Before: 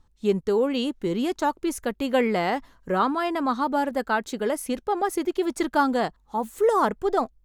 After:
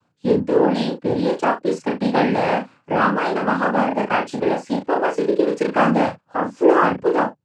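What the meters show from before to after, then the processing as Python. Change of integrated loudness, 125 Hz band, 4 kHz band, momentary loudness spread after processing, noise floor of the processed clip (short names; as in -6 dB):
+5.5 dB, +10.0 dB, +2.0 dB, 6 LU, -66 dBFS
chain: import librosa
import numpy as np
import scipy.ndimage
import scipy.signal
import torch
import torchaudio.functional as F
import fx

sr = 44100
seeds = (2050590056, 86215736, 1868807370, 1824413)

p1 = fx.high_shelf(x, sr, hz=4300.0, db=-12.0)
p2 = fx.noise_vocoder(p1, sr, seeds[0], bands=8)
p3 = p2 + fx.room_early_taps(p2, sr, ms=(34, 70), db=(-3.5, -14.5), dry=0)
y = p3 * librosa.db_to_amplitude(4.5)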